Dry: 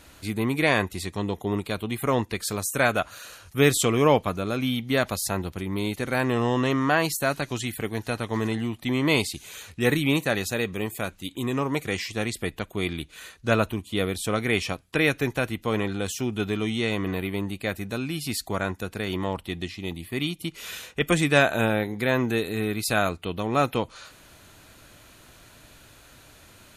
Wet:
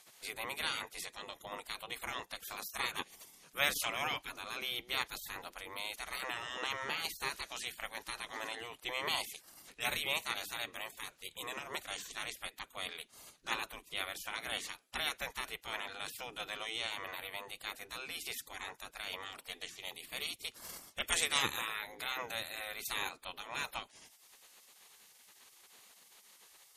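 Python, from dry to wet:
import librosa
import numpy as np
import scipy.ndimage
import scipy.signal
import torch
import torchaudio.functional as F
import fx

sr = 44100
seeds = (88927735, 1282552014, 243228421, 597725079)

y = fx.high_shelf(x, sr, hz=2900.0, db=5.5, at=(19.26, 21.59))
y = fx.spec_gate(y, sr, threshold_db=-15, keep='weak')
y = y * 10.0 ** (-4.0 / 20.0)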